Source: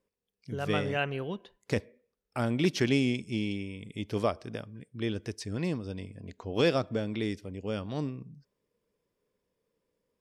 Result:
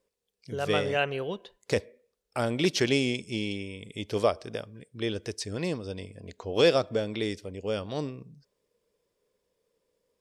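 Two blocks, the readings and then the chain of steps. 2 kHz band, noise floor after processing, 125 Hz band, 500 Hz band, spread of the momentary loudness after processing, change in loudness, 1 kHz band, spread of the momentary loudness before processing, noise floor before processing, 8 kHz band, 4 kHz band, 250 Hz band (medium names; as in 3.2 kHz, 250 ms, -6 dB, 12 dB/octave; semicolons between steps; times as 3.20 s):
+3.0 dB, -82 dBFS, -1.5 dB, +4.5 dB, 15 LU, +2.5 dB, +3.0 dB, 15 LU, -85 dBFS, +6.5 dB, +5.5 dB, -1.0 dB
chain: graphic EQ 125/250/500/4000/8000 Hz -3/-4/+5/+4/+5 dB; trim +1.5 dB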